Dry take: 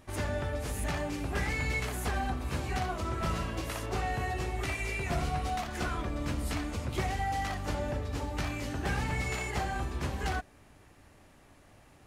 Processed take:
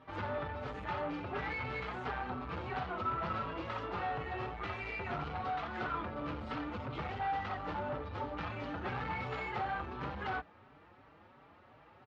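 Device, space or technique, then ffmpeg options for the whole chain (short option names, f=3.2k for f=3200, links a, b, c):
barber-pole flanger into a guitar amplifier: -filter_complex "[0:a]asplit=2[a][b];[b]adelay=4.8,afreqshift=2.9[c];[a][c]amix=inputs=2:normalize=1,asoftclip=type=tanh:threshold=-34.5dB,highpass=93,equalizer=f=490:t=q:w=4:g=5,equalizer=f=890:t=q:w=4:g=7,equalizer=f=1.3k:t=q:w=4:g=9,lowpass=f=3.7k:w=0.5412,lowpass=f=3.7k:w=1.3066"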